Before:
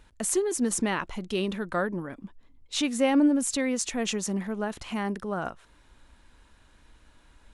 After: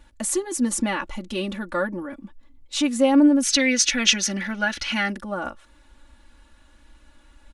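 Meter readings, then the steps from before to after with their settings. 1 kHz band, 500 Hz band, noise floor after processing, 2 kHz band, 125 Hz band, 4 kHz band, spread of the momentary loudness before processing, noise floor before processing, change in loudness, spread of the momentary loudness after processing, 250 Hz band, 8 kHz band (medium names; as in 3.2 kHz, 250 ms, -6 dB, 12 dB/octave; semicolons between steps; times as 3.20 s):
+3.5 dB, +2.5 dB, -56 dBFS, +9.5 dB, no reading, +11.0 dB, 10 LU, -59 dBFS, +6.0 dB, 14 LU, +5.0 dB, +7.0 dB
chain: time-frequency box 3.43–5.13 s, 1.3–6.6 kHz +12 dB; comb 3.5 ms, depth 98%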